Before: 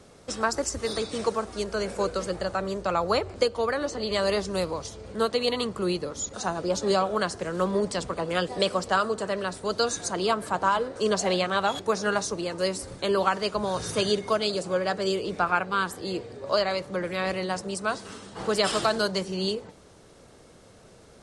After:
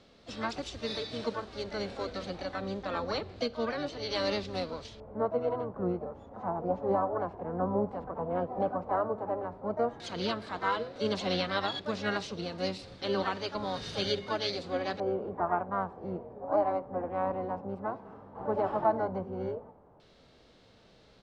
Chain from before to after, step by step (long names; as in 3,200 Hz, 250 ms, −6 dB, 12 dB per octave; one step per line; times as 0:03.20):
pitch-shifted copies added −12 semitones −7 dB, +5 semitones −8 dB
harmonic and percussive parts rebalanced percussive −7 dB
auto-filter low-pass square 0.1 Hz 890–4,000 Hz
level −6.5 dB